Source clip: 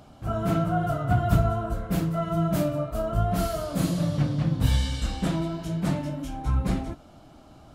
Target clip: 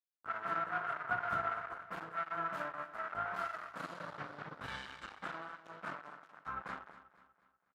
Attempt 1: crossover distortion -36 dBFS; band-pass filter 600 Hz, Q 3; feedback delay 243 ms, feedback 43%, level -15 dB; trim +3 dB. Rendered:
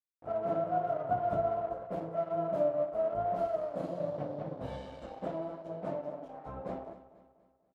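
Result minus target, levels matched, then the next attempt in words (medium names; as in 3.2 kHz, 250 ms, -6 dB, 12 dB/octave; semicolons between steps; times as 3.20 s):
500 Hz band +10.5 dB; crossover distortion: distortion -8 dB
crossover distortion -28.5 dBFS; band-pass filter 1.4 kHz, Q 3; feedback delay 243 ms, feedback 43%, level -15 dB; trim +3 dB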